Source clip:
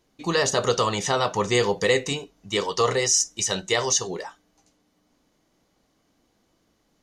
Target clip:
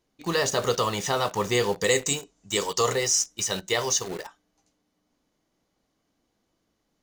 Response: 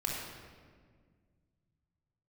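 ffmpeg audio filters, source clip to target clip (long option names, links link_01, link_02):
-filter_complex "[0:a]asettb=1/sr,asplit=3[link_01][link_02][link_03];[link_01]atrim=end=1.844[link_04];[link_02]atrim=start=1.84:end=2.93,asetpts=PTS-STARTPTS,afade=type=in:duration=0.004:curve=qsin,afade=type=out:start_time=1.086:duration=0.004:curve=qsin,lowpass=frequency=7700:width_type=q:width=5.7[link_05];[link_03]atrim=start=2.926[link_06];[link_04][link_05]acrossfade=duration=0.004:curve1=hsin:curve2=qsin[link_07];[link_07][link_06]acrossfade=duration=0.004:curve1=qsin:curve2=hsin,asplit=2[link_08][link_09];[link_09]acrusher=bits=4:mix=0:aa=0.000001,volume=-3.5dB[link_10];[link_08][link_10]amix=inputs=2:normalize=0,volume=-7dB"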